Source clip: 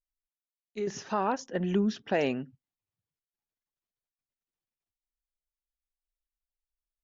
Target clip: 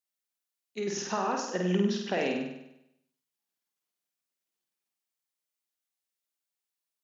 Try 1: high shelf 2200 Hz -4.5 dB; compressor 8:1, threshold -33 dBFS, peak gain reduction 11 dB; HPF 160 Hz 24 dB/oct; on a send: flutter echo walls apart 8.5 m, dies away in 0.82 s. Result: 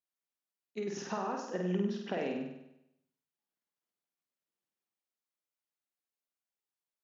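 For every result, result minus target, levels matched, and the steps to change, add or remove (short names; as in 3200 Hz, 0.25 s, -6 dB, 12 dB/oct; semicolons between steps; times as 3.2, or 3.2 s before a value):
compressor: peak gain reduction +6 dB; 4000 Hz band -4.5 dB
change: compressor 8:1, threshold -26 dBFS, peak gain reduction 5 dB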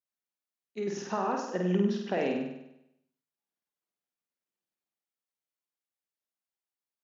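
4000 Hz band -6.5 dB
change: high shelf 2200 Hz +5.5 dB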